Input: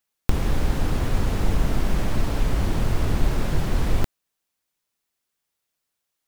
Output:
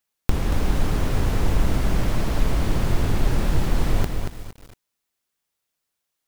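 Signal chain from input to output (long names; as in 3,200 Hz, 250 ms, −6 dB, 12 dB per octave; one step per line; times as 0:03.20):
feedback echo at a low word length 231 ms, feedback 35%, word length 7 bits, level −5 dB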